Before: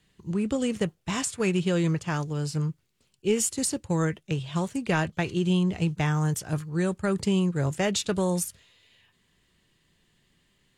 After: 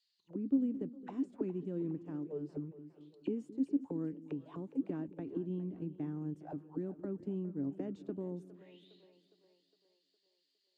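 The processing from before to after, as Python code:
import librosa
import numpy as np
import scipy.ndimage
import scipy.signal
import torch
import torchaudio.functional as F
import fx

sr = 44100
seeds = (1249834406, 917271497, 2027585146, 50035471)

p1 = scipy.signal.sosfilt(scipy.signal.butter(2, 57.0, 'highpass', fs=sr, output='sos'), x)
p2 = fx.auto_wah(p1, sr, base_hz=280.0, top_hz=4700.0, q=8.7, full_db=-25.0, direction='down')
p3 = p2 + fx.echo_split(p2, sr, split_hz=400.0, low_ms=215, high_ms=410, feedback_pct=52, wet_db=-15, dry=0)
y = p3 * 10.0 ** (2.0 / 20.0)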